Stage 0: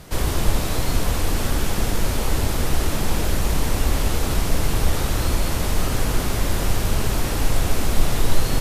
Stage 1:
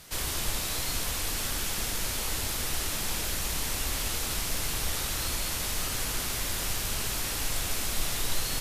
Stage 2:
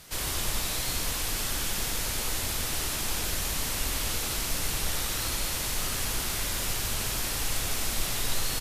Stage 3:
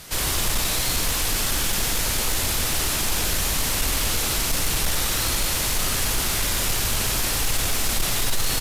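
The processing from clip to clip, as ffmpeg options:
-af "tiltshelf=f=1.3k:g=-7.5,volume=-7.5dB"
-af "aecho=1:1:93:0.473"
-af "asoftclip=type=tanh:threshold=-23dB,volume=8.5dB"

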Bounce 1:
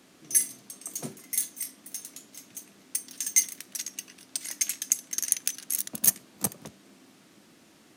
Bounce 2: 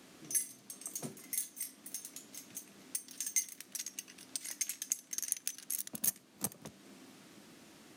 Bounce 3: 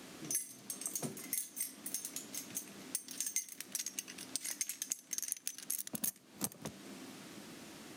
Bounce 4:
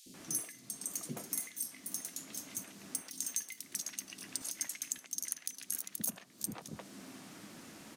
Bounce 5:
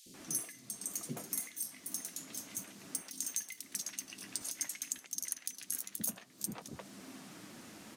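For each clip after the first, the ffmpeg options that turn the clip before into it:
-af "acompressor=threshold=-49dB:ratio=1.5"
-af "acompressor=threshold=-41dB:ratio=4,volume=5.5dB"
-filter_complex "[0:a]acrossover=split=420|3400[a][b][c];[a]adelay=60[d];[b]adelay=140[e];[d][e][c]amix=inputs=3:normalize=0,volume=1dB"
-af "flanger=delay=0.9:depth=9.5:regen=-53:speed=0.58:shape=triangular,volume=4dB"

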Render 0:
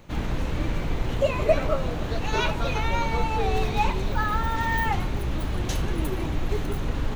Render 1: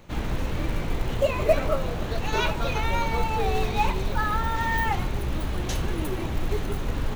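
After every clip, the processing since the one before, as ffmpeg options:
-af "bandreject=f=50:t=h:w=6,bandreject=f=100:t=h:w=6,bandreject=f=150:t=h:w=6,bandreject=f=200:t=h:w=6,bandreject=f=250:t=h:w=6,bandreject=f=300:t=h:w=6,acrusher=bits=7:mode=log:mix=0:aa=0.000001"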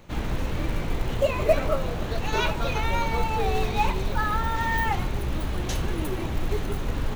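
-af anull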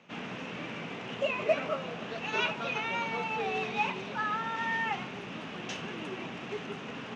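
-af "highpass=f=180:w=0.5412,highpass=f=180:w=1.3066,equalizer=f=330:t=q:w=4:g=-8,equalizer=f=550:t=q:w=4:g=-4,equalizer=f=900:t=q:w=4:g=-3,equalizer=f=2.7k:t=q:w=4:g=7,equalizer=f=4.2k:t=q:w=4:g=-8,lowpass=f=5.7k:w=0.5412,lowpass=f=5.7k:w=1.3066,volume=-4dB"

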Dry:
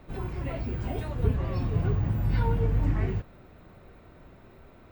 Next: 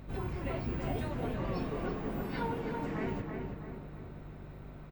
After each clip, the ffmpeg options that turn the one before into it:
-filter_complex "[0:a]afftfilt=real='re*lt(hypot(re,im),0.251)':imag='im*lt(hypot(re,im),0.251)':win_size=1024:overlap=0.75,aeval=exprs='val(0)+0.00562*(sin(2*PI*50*n/s)+sin(2*PI*2*50*n/s)/2+sin(2*PI*3*50*n/s)/3+sin(2*PI*4*50*n/s)/4+sin(2*PI*5*50*n/s)/5)':c=same,asplit=2[a][b];[b]adelay=327,lowpass=f=2.3k:p=1,volume=-4dB,asplit=2[c][d];[d]adelay=327,lowpass=f=2.3k:p=1,volume=0.51,asplit=2[e][f];[f]adelay=327,lowpass=f=2.3k:p=1,volume=0.51,asplit=2[g][h];[h]adelay=327,lowpass=f=2.3k:p=1,volume=0.51,asplit=2[i][j];[j]adelay=327,lowpass=f=2.3k:p=1,volume=0.51,asplit=2[k][l];[l]adelay=327,lowpass=f=2.3k:p=1,volume=0.51,asplit=2[m][n];[n]adelay=327,lowpass=f=2.3k:p=1,volume=0.51[o];[a][c][e][g][i][k][m][o]amix=inputs=8:normalize=0,volume=-1.5dB"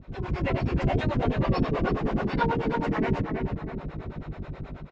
-filter_complex "[0:a]lowpass=f=6.1k:w=0.5412,lowpass=f=6.1k:w=1.3066,dynaudnorm=f=100:g=5:m=10dB,acrossover=split=430[a][b];[a]aeval=exprs='val(0)*(1-1/2+1/2*cos(2*PI*9.3*n/s))':c=same[c];[b]aeval=exprs='val(0)*(1-1/2-1/2*cos(2*PI*9.3*n/s))':c=same[d];[c][d]amix=inputs=2:normalize=0,volume=4.5dB"

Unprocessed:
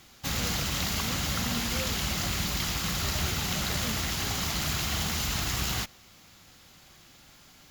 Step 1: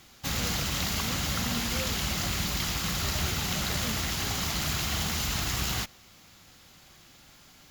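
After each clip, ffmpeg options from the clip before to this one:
-af anull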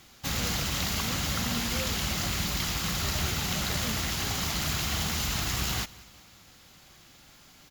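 -af "aecho=1:1:191|382|573:0.0794|0.0381|0.0183"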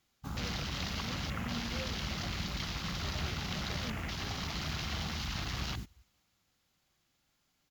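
-af "afwtdn=0.02,volume=-5.5dB"

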